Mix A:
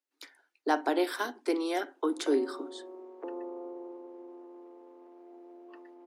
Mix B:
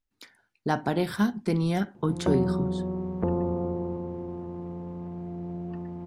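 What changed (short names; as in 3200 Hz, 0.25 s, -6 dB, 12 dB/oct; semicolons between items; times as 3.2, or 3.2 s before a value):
background +10.0 dB; master: remove steep high-pass 270 Hz 96 dB/oct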